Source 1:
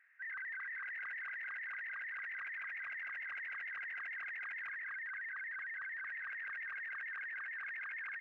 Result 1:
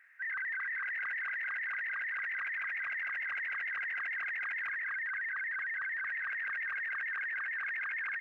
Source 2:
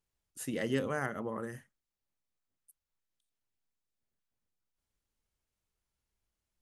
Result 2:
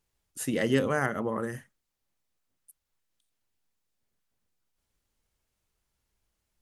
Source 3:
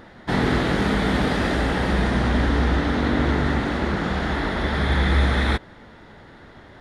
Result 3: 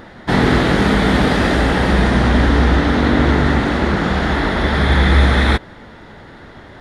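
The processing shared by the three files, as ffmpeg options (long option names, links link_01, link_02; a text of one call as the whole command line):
ffmpeg -i in.wav -af "volume=7dB" -ar 48000 -c:a aac -b:a 192k out.aac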